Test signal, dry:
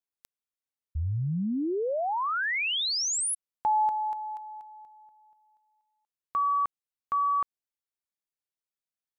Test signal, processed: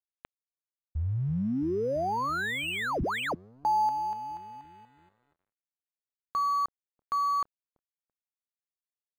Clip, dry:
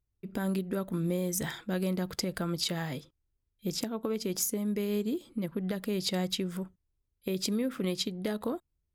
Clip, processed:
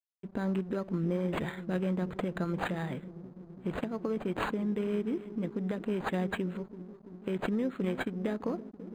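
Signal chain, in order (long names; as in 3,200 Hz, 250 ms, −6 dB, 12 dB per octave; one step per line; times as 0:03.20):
bucket-brigade delay 334 ms, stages 1,024, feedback 77%, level −12.5 dB
dead-zone distortion −54.5 dBFS
linearly interpolated sample-rate reduction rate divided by 8×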